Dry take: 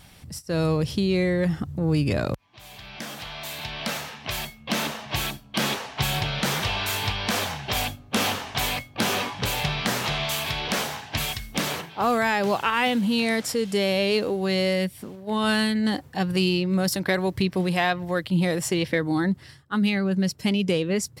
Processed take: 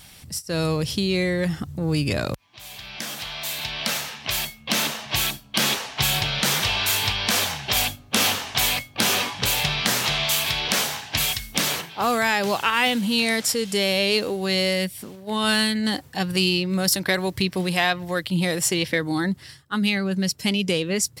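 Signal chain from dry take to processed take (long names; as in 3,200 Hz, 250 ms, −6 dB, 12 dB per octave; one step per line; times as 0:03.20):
high-shelf EQ 2,200 Hz +9.5 dB
level −1 dB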